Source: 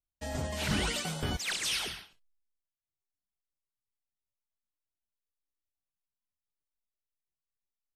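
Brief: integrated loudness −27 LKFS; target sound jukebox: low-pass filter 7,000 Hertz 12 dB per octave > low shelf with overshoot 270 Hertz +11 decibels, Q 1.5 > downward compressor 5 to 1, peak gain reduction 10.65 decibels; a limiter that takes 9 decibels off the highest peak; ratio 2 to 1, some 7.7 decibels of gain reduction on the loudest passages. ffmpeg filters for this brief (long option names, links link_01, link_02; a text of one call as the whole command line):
ffmpeg -i in.wav -af "acompressor=threshold=-40dB:ratio=2,alimiter=level_in=11dB:limit=-24dB:level=0:latency=1,volume=-11dB,lowpass=7000,lowshelf=frequency=270:width_type=q:width=1.5:gain=11,acompressor=threshold=-41dB:ratio=5,volume=17.5dB" out.wav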